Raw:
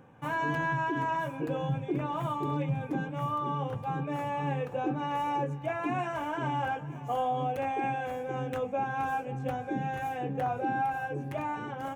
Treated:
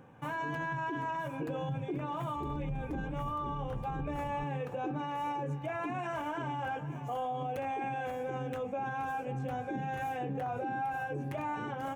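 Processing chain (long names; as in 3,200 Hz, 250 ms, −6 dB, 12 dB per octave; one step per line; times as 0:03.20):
0:02.35–0:04.44: sub-octave generator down 2 octaves, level −2 dB
brickwall limiter −28.5 dBFS, peak gain reduction 9.5 dB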